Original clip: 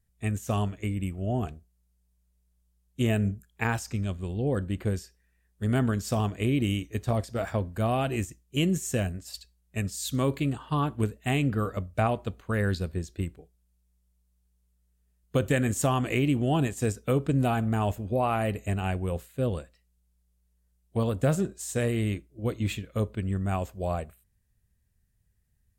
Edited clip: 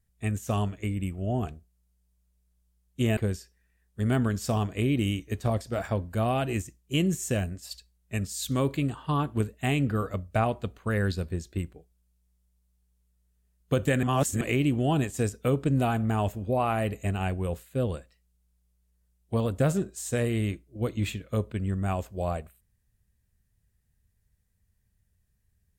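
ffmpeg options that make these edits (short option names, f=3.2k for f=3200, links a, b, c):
-filter_complex "[0:a]asplit=4[a][b][c][d];[a]atrim=end=3.172[e];[b]atrim=start=4.798:end=15.662[f];[c]atrim=start=15.658:end=16.042,asetpts=PTS-STARTPTS,areverse[g];[d]atrim=start=16.038[h];[e][f]acrossfade=d=0.004:c1=hsin:c2=hsin[i];[i][g]acrossfade=d=0.004:c1=hsin:c2=hsin[j];[j][h]acrossfade=d=0.004:c1=hsin:c2=hsin"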